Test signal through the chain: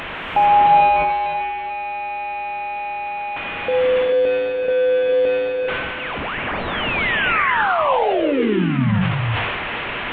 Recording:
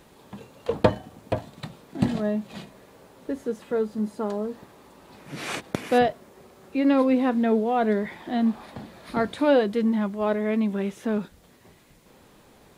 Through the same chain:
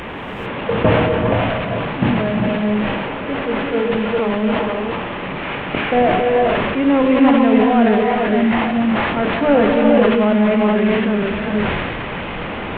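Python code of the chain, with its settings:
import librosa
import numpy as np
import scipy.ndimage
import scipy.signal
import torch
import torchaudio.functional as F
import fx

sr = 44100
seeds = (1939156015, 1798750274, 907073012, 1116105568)

y = fx.delta_mod(x, sr, bps=16000, step_db=-27.5)
y = fx.hum_notches(y, sr, base_hz=50, count=10)
y = fx.rev_gated(y, sr, seeds[0], gate_ms=470, shape='rising', drr_db=-1.0)
y = fx.sustainer(y, sr, db_per_s=24.0)
y = y * librosa.db_to_amplitude(5.0)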